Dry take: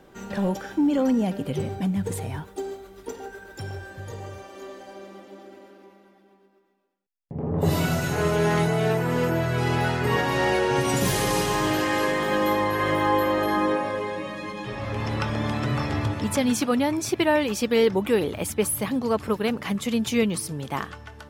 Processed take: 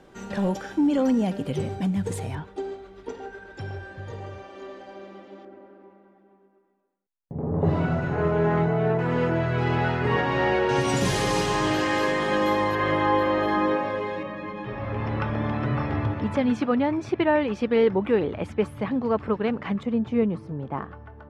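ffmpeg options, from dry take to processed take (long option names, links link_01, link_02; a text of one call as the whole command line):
ffmpeg -i in.wav -af "asetnsamples=nb_out_samples=441:pad=0,asendcmd='2.35 lowpass f 3800;5.45 lowpass f 1500;8.99 lowpass f 2900;10.69 lowpass f 6900;12.75 lowpass f 3900;14.23 lowpass f 2100;19.83 lowpass f 1100',lowpass=9300" out.wav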